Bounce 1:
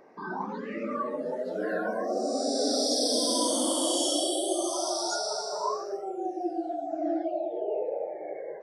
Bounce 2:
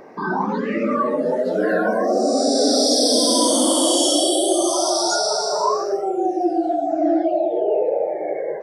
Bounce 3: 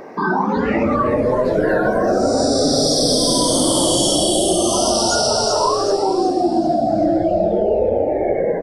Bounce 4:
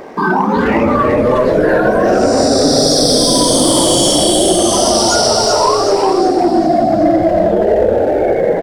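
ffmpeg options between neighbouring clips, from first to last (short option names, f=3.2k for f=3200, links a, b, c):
-filter_complex "[0:a]lowshelf=f=170:g=5,acontrast=81,asplit=2[a][b];[b]alimiter=limit=-18.5dB:level=0:latency=1,volume=-2dB[c];[a][c]amix=inputs=2:normalize=0"
-filter_complex "[0:a]acompressor=threshold=-21dB:ratio=4,asplit=2[a][b];[b]asplit=5[c][d][e][f][g];[c]adelay=380,afreqshift=-120,volume=-8.5dB[h];[d]adelay=760,afreqshift=-240,volume=-14.9dB[i];[e]adelay=1140,afreqshift=-360,volume=-21.3dB[j];[f]adelay=1520,afreqshift=-480,volume=-27.6dB[k];[g]adelay=1900,afreqshift=-600,volume=-34dB[l];[h][i][j][k][l]amix=inputs=5:normalize=0[m];[a][m]amix=inputs=2:normalize=0,volume=6.5dB"
-filter_complex "[0:a]aeval=exprs='sgn(val(0))*max(abs(val(0))-0.00355,0)':c=same,acontrast=47,asplit=2[a][b];[b]adelay=360,highpass=300,lowpass=3.4k,asoftclip=type=hard:threshold=-12dB,volume=-6dB[c];[a][c]amix=inputs=2:normalize=0"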